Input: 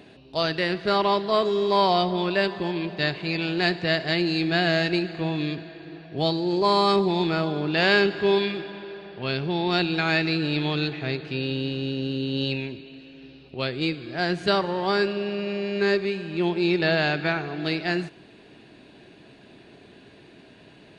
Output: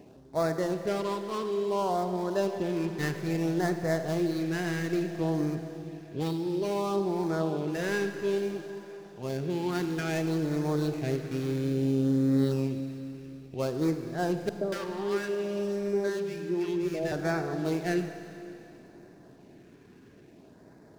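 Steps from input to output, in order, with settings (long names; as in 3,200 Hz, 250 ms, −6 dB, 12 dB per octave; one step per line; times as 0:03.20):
running median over 15 samples
dynamic equaliser 490 Hz, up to +3 dB, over −33 dBFS, Q 1.2
speech leveller within 4 dB 0.5 s
auto-filter notch sine 0.59 Hz 600–3,000 Hz
0:14.49–0:17.12: three-band delay without the direct sound lows, mids, highs 120/230 ms, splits 170/890 Hz
four-comb reverb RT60 3.1 s, combs from 33 ms, DRR 8.5 dB
level −5.5 dB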